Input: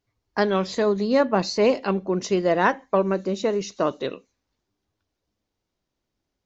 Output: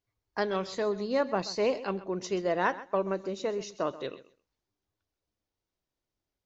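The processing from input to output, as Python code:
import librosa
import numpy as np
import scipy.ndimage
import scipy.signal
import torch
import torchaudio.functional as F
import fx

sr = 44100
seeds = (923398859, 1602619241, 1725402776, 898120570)

p1 = fx.peak_eq(x, sr, hz=220.0, db=-4.5, octaves=0.85)
p2 = p1 + fx.echo_feedback(p1, sr, ms=130, feedback_pct=16, wet_db=-16.5, dry=0)
y = p2 * 10.0 ** (-7.5 / 20.0)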